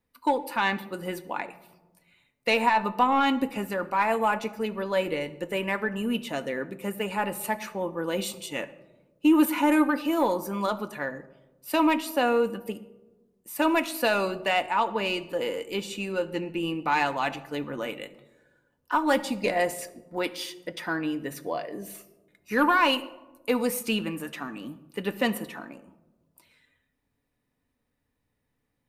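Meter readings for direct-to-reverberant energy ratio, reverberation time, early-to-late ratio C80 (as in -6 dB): 8.0 dB, 1.1 s, 18.0 dB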